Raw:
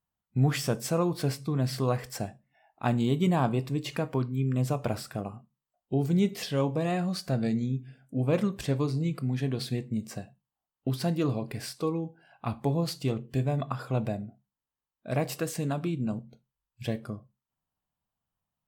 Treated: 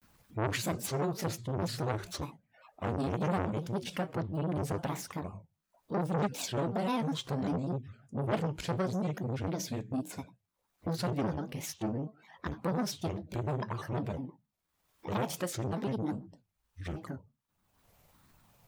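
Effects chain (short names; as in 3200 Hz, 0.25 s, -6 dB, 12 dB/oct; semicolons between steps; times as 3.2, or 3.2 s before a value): upward compressor, threshold -41 dBFS; grains, spray 13 ms, pitch spread up and down by 7 st; core saturation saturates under 1100 Hz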